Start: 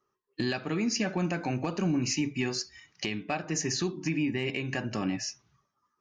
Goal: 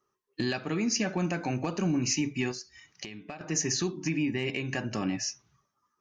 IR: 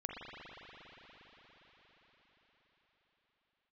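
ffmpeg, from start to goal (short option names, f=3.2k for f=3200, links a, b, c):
-filter_complex "[0:a]equalizer=f=6.1k:t=o:w=0.23:g=5,asettb=1/sr,asplit=3[a][b][c];[a]atrim=end=2.514[d];[b]atrim=start=2.51:end=3.41,asetpts=PTS-STARTPTS,afade=t=in:d=0.004:c=qsin,afade=t=out:st=0.896:d=0.004:c=qsin,acompressor=threshold=-38dB:ratio=10[e];[c]atrim=start=3.406[f];[d][e]acrossfade=d=0.004:c1=hsin:c2=qsin[g];[g][f]acrossfade=d=0.004:c1=qsin:c2=hsin"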